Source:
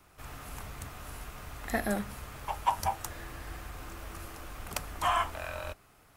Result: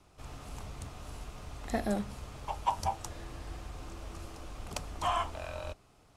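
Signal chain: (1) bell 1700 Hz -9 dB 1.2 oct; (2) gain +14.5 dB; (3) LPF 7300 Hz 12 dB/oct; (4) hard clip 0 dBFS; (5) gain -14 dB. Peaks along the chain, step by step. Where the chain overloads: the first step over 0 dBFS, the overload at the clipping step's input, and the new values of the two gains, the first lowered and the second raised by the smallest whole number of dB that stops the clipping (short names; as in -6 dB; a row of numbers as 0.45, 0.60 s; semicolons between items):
-17.5, -3.0, -3.0, -3.0, -17.0 dBFS; no overload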